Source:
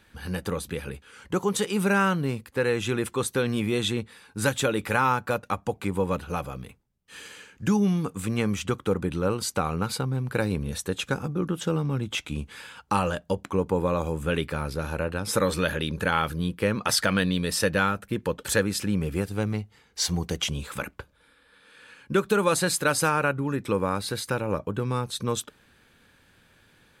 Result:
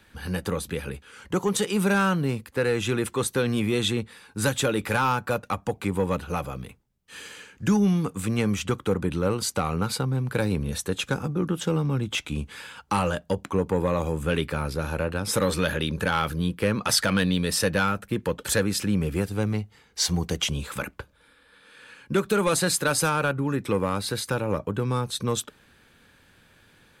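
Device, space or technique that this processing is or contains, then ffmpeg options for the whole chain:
one-band saturation: -filter_complex "[0:a]acrossover=split=220|3200[s0][s1][s2];[s1]asoftclip=type=tanh:threshold=0.112[s3];[s0][s3][s2]amix=inputs=3:normalize=0,volume=1.26"

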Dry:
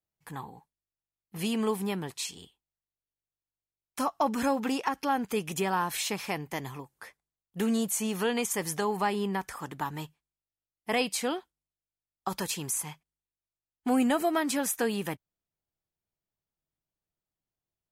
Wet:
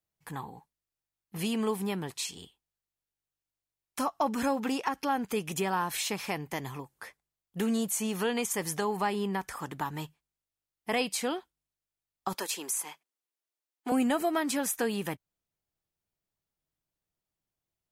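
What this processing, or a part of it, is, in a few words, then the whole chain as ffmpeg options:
parallel compression: -filter_complex "[0:a]asplit=2[s0][s1];[s1]acompressor=threshold=0.0158:ratio=6,volume=0.708[s2];[s0][s2]amix=inputs=2:normalize=0,asettb=1/sr,asplit=3[s3][s4][s5];[s3]atrim=end=12.344[s6];[s4]atrim=start=12.34:end=13.92,asetpts=PTS-STARTPTS,afade=t=in:d=0.004:c=qsin,afade=t=out:st=1.576:d=0.004:c=qsin,highpass=f=290:w=0.5412,highpass=f=290:w=1.3066[s7];[s5]atrim=start=13.916[s8];[s6][s7]acrossfade=d=0.004:c1=hsin:c2=qsin[s9];[s9][s8]acrossfade=d=0.004:c1=qsin:c2=hsin,volume=0.708"

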